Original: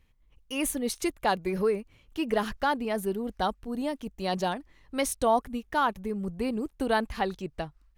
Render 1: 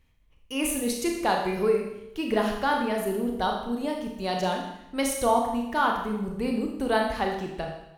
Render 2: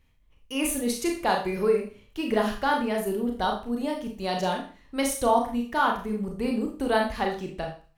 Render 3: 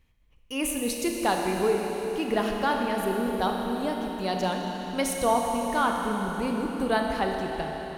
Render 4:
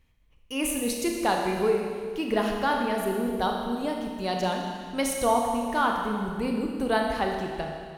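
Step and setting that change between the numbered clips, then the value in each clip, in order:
Schroeder reverb, RT60: 0.85, 0.39, 4.5, 2 s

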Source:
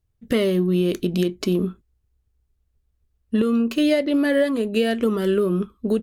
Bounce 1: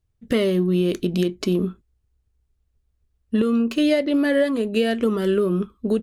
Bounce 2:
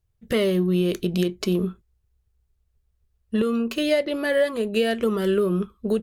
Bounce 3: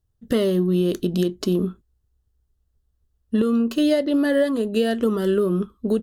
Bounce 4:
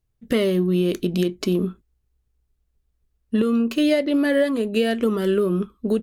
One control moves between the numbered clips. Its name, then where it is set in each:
bell, frequency: 15000, 270, 2300, 83 Hz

